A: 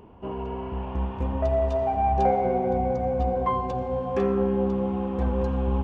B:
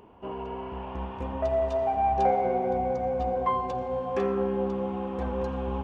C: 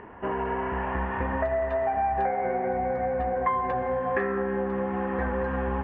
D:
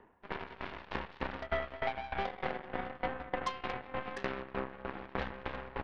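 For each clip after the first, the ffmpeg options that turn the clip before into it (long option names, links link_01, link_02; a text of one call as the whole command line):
ffmpeg -i in.wav -af "lowshelf=frequency=260:gain=-9.5" out.wav
ffmpeg -i in.wav -af "acompressor=threshold=-32dB:ratio=6,lowpass=frequency=1800:width_type=q:width=7.6,volume=6.5dB" out.wav
ffmpeg -i in.wav -af "aeval=exprs='0.224*(cos(1*acos(clip(val(0)/0.224,-1,1)))-cos(1*PI/2))+0.0398*(cos(7*acos(clip(val(0)/0.224,-1,1)))-cos(7*PI/2))+0.01*(cos(8*acos(clip(val(0)/0.224,-1,1)))-cos(8*PI/2))':channel_layout=same,aeval=exprs='val(0)*pow(10,-19*if(lt(mod(3.3*n/s,1),2*abs(3.3)/1000),1-mod(3.3*n/s,1)/(2*abs(3.3)/1000),(mod(3.3*n/s,1)-2*abs(3.3)/1000)/(1-2*abs(3.3)/1000))/20)':channel_layout=same,volume=-1.5dB" out.wav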